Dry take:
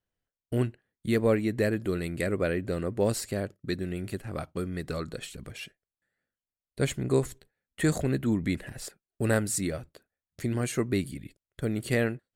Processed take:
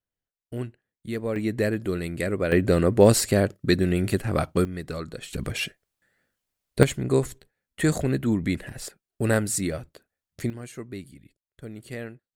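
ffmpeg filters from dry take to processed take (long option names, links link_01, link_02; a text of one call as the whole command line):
ffmpeg -i in.wav -af "asetnsamples=nb_out_samples=441:pad=0,asendcmd='1.36 volume volume 2dB;2.52 volume volume 10.5dB;4.65 volume volume 0.5dB;5.33 volume volume 12dB;6.83 volume volume 3dB;10.5 volume volume -9.5dB',volume=-5dB" out.wav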